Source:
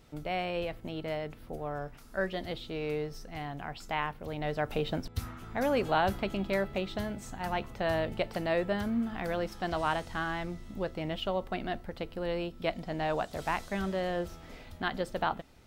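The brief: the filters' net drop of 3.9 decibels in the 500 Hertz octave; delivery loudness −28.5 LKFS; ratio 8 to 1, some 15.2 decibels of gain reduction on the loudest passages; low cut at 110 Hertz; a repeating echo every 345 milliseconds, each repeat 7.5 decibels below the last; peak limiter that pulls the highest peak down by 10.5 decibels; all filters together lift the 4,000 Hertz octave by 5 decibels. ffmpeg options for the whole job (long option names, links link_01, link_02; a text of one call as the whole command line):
ffmpeg -i in.wav -af "highpass=110,equalizer=frequency=500:width_type=o:gain=-5,equalizer=frequency=4000:width_type=o:gain=7,acompressor=threshold=-40dB:ratio=8,alimiter=level_in=11.5dB:limit=-24dB:level=0:latency=1,volume=-11.5dB,aecho=1:1:345|690|1035|1380|1725:0.422|0.177|0.0744|0.0312|0.0131,volume=17.5dB" out.wav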